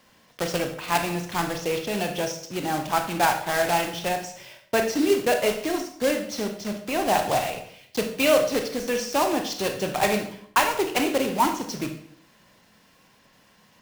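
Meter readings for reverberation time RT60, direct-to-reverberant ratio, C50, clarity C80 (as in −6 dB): 0.60 s, 4.5 dB, 8.0 dB, 11.5 dB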